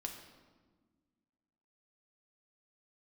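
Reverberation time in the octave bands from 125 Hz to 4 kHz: 2.0, 2.3, 1.6, 1.3, 1.1, 0.95 s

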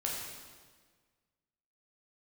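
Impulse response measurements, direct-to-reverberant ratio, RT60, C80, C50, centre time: -3.5 dB, 1.5 s, 2.5 dB, 1.0 dB, 79 ms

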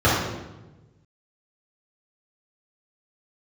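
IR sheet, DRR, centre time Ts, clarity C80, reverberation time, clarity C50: -10.0 dB, 70 ms, 3.5 dB, 1.1 s, 0.0 dB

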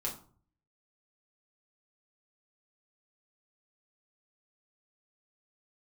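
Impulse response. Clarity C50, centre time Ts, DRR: 10.0 dB, 20 ms, -3.5 dB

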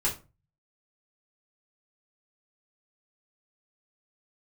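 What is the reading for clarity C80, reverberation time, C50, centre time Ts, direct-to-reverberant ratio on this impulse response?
17.5 dB, 0.30 s, 11.0 dB, 18 ms, -5.0 dB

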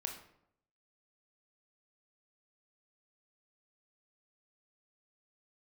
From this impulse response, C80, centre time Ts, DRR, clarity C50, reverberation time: 10.5 dB, 23 ms, 2.5 dB, 7.0 dB, 0.75 s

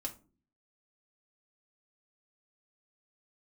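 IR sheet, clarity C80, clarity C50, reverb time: 21.5 dB, 14.5 dB, 0.40 s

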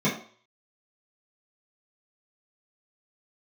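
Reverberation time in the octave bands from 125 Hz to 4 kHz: 0.30, 0.40, 0.45, 0.50, 0.45, 0.50 s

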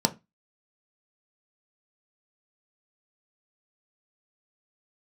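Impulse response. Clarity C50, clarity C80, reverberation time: 20.0 dB, 28.0 dB, 0.20 s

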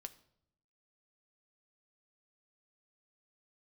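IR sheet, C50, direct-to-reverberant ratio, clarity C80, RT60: 17.0 dB, 9.0 dB, 20.0 dB, 0.70 s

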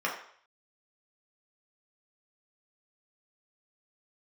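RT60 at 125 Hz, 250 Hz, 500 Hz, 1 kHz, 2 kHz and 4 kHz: 0.40, 0.45, 0.55, 0.60, 0.60, 0.55 s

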